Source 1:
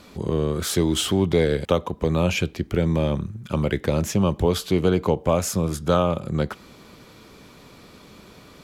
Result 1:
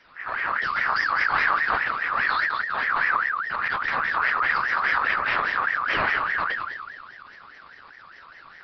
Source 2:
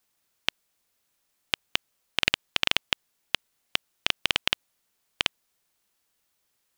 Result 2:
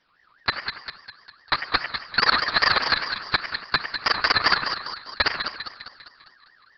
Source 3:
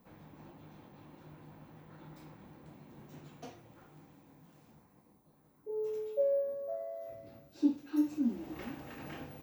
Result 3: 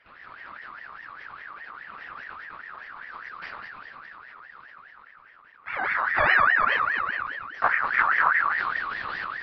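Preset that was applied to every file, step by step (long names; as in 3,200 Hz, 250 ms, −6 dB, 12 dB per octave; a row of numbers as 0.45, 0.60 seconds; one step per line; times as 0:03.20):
notch filter 1,200 Hz, Q 10
half-wave rectification
hollow resonant body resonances 1,300/2,900 Hz, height 8 dB
soft clipping −11 dBFS
echo with a time of its own for lows and highs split 1,300 Hz, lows 94 ms, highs 202 ms, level −7 dB
four-comb reverb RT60 0.9 s, combs from 33 ms, DRR 12.5 dB
linear-prediction vocoder at 8 kHz whisper
ring modulator whose carrier an LFO sweeps 1,500 Hz, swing 25%, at 4.9 Hz
loudness normalisation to −23 LKFS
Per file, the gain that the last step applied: −2.0, +15.5, +10.0 decibels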